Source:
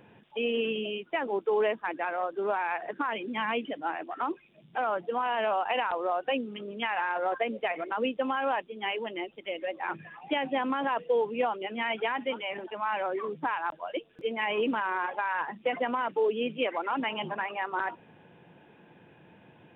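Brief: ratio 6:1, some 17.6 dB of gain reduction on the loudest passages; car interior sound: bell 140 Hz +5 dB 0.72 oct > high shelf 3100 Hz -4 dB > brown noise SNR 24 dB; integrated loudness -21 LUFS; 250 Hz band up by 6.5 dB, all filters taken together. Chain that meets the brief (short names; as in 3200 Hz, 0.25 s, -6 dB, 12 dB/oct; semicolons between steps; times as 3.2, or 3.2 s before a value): bell 250 Hz +6.5 dB; compressor 6:1, threshold -41 dBFS; bell 140 Hz +5 dB 0.72 oct; high shelf 3100 Hz -4 dB; brown noise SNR 24 dB; gain +23 dB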